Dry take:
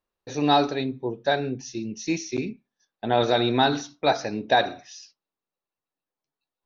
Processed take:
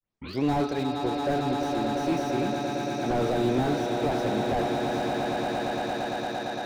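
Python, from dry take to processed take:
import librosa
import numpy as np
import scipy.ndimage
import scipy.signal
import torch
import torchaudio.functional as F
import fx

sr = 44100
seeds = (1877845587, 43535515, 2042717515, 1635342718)

y = fx.tape_start_head(x, sr, length_s=0.43)
y = fx.echo_swell(y, sr, ms=114, loudest=8, wet_db=-12.0)
y = fx.slew_limit(y, sr, full_power_hz=50.0)
y = y * librosa.db_to_amplitude(-1.5)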